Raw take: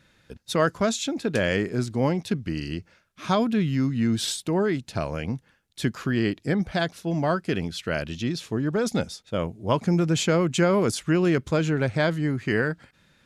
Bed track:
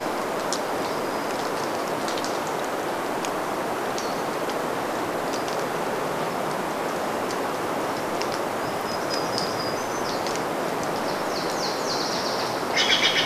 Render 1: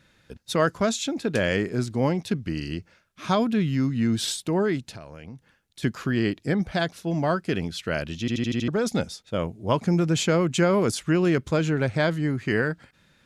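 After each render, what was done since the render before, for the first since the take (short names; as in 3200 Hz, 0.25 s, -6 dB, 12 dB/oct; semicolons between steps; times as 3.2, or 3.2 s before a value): 4.91–5.83 compressor 4:1, threshold -39 dBFS; 8.2 stutter in place 0.08 s, 6 plays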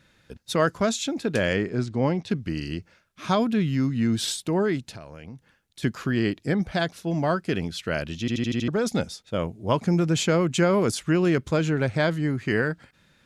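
1.53–2.3 air absorption 82 m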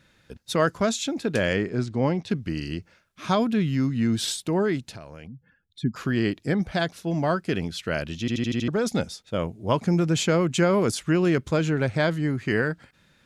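5.27–5.96 spectral contrast raised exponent 2.1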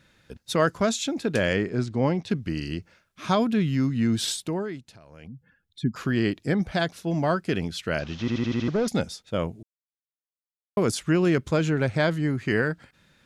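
4.42–5.3 dip -10 dB, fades 0.35 s quadratic; 7.99–8.88 delta modulation 32 kbps, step -40.5 dBFS; 9.63–10.77 mute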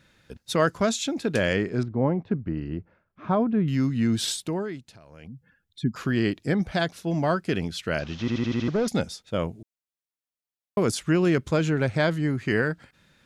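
1.83–3.68 LPF 1200 Hz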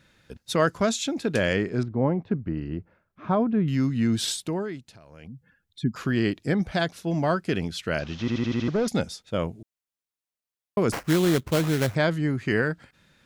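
10.92–11.95 sample-rate reducer 3700 Hz, jitter 20%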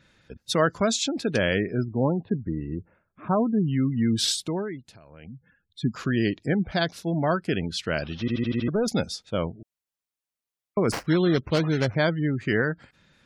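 spectral gate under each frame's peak -30 dB strong; dynamic EQ 4800 Hz, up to +6 dB, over -47 dBFS, Q 1.5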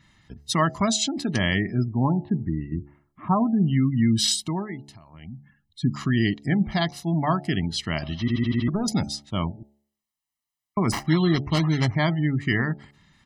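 comb 1 ms, depth 83%; de-hum 71.39 Hz, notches 12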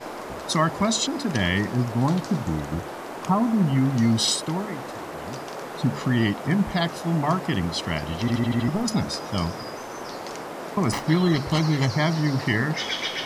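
add bed track -8 dB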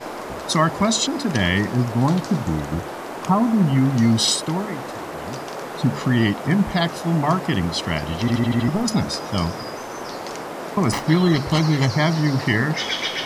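gain +3.5 dB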